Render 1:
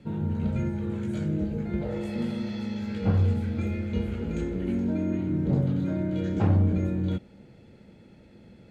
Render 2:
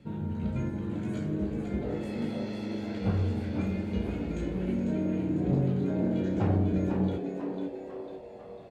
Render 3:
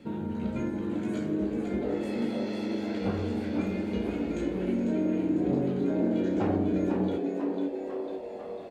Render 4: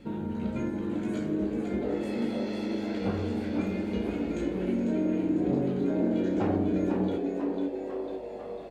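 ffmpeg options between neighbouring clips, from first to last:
-filter_complex "[0:a]asplit=2[a][b];[b]adelay=16,volume=-11dB[c];[a][c]amix=inputs=2:normalize=0,asplit=7[d][e][f][g][h][i][j];[e]adelay=498,afreqshift=96,volume=-6.5dB[k];[f]adelay=996,afreqshift=192,volume=-12.5dB[l];[g]adelay=1494,afreqshift=288,volume=-18.5dB[m];[h]adelay=1992,afreqshift=384,volume=-24.6dB[n];[i]adelay=2490,afreqshift=480,volume=-30.6dB[o];[j]adelay=2988,afreqshift=576,volume=-36.6dB[p];[d][k][l][m][n][o][p]amix=inputs=7:normalize=0,volume=-3.5dB"
-filter_complex "[0:a]lowshelf=f=190:t=q:w=1.5:g=-8.5,asplit=2[a][b];[b]acompressor=threshold=-39dB:ratio=6,volume=0dB[c];[a][c]amix=inputs=2:normalize=0"
-af "aeval=exprs='val(0)+0.00126*(sin(2*PI*50*n/s)+sin(2*PI*2*50*n/s)/2+sin(2*PI*3*50*n/s)/3+sin(2*PI*4*50*n/s)/4+sin(2*PI*5*50*n/s)/5)':c=same"

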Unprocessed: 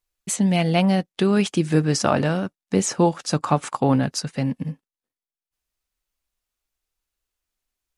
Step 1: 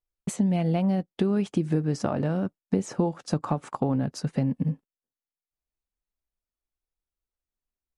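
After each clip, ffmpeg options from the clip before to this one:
-af "acompressor=threshold=-28dB:ratio=6,tiltshelf=f=1.2k:g=7,agate=range=-12dB:threshold=-41dB:ratio=16:detection=peak"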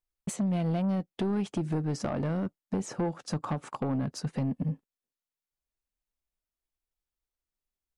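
-af "asoftclip=type=tanh:threshold=-22dB,volume=-1.5dB"

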